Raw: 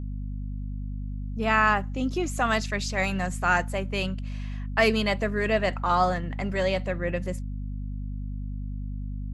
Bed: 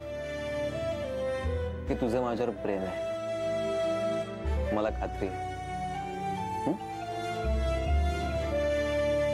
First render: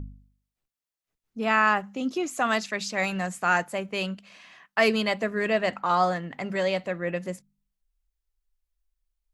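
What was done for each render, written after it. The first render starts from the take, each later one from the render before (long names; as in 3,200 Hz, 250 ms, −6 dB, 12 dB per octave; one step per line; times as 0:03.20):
hum removal 50 Hz, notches 5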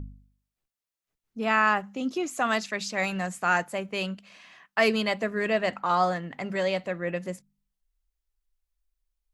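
level −1 dB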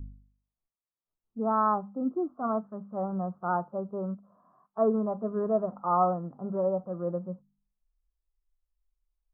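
Butterworth low-pass 1,300 Hz 72 dB per octave
harmonic and percussive parts rebalanced percussive −13 dB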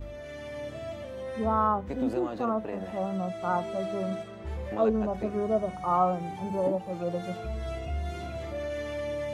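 mix in bed −5.5 dB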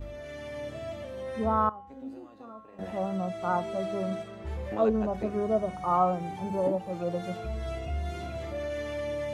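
0:01.69–0:02.79: tuned comb filter 270 Hz, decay 0.81 s, mix 90%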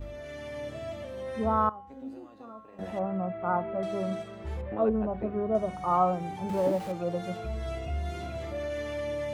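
0:02.99–0:03.83: low-pass filter 2,200 Hz 24 dB per octave
0:04.61–0:05.55: high-frequency loss of the air 470 metres
0:06.49–0:06.92: converter with a step at zero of −38.5 dBFS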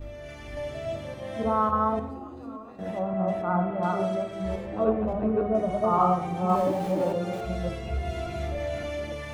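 delay that plays each chunk backwards 285 ms, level −1 dB
rectangular room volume 350 cubic metres, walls mixed, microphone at 0.54 metres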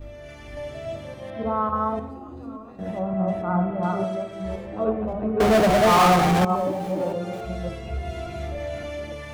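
0:01.30–0:01.76: moving average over 6 samples
0:02.28–0:04.04: low-shelf EQ 210 Hz +7.5 dB
0:05.40–0:06.45: power curve on the samples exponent 0.35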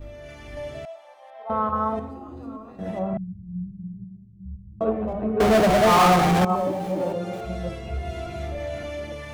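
0:00.85–0:01.50: four-pole ladder high-pass 720 Hz, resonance 70%
0:03.17–0:04.81: inverse Chebyshev low-pass filter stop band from 510 Hz, stop band 60 dB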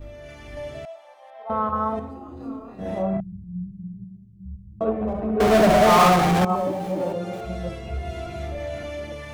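0:02.37–0:03.44: double-tracking delay 30 ms −2 dB
0:04.94–0:06.09: flutter between parallel walls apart 11.9 metres, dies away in 0.69 s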